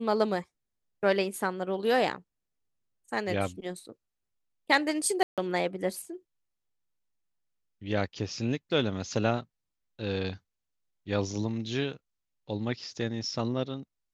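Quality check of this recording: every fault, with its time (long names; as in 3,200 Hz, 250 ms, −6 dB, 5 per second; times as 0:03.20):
0:05.23–0:05.38: drop-out 147 ms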